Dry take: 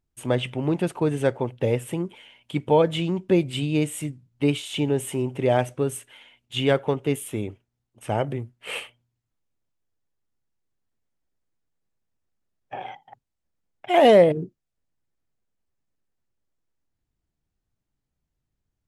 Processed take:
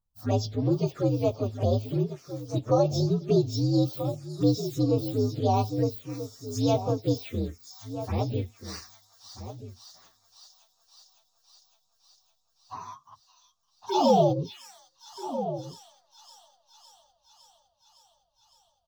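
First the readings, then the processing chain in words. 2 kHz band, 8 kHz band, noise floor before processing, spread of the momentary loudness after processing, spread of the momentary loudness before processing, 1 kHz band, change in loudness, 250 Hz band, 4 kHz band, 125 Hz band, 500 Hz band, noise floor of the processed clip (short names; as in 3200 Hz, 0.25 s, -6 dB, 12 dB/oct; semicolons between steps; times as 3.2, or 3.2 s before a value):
-18.0 dB, -5.0 dB, -82 dBFS, 18 LU, 15 LU, -2.0 dB, -4.0 dB, -1.5 dB, -5.5 dB, +1.0 dB, -5.0 dB, -72 dBFS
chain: inharmonic rescaling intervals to 124%; on a send: thin delay 0.559 s, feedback 73%, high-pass 3200 Hz, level -8.5 dB; on the sum: envelope phaser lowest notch 360 Hz, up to 1900 Hz, full sweep at -22.5 dBFS; outdoor echo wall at 220 m, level -12 dB; dynamic EQ 1700 Hz, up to -6 dB, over -42 dBFS, Q 0.81; in parallel at -2 dB: limiter -18 dBFS, peak gain reduction 8 dB; on the sum: gain -3 dB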